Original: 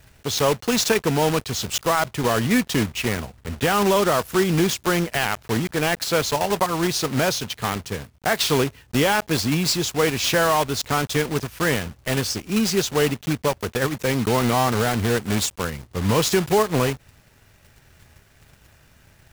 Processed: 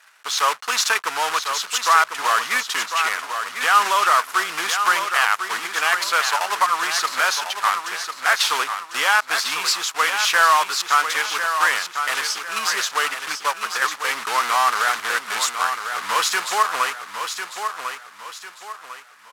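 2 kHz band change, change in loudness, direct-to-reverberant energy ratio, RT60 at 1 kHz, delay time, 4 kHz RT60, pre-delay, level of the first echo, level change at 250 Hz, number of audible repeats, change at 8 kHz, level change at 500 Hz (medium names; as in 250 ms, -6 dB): +7.0 dB, +1.5 dB, no reverb, no reverb, 1049 ms, no reverb, no reverb, -7.5 dB, -22.5 dB, 4, +2.0 dB, -11.0 dB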